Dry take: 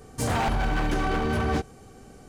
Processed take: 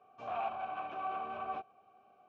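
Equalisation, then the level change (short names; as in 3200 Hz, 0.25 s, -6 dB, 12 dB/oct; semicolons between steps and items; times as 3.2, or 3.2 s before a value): vowel filter a; air absorption 140 m; speaker cabinet 100–6100 Hz, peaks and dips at 150 Hz -6 dB, 280 Hz -8 dB, 480 Hz -8 dB, 750 Hz -4 dB, 4700 Hz -8 dB; +1.0 dB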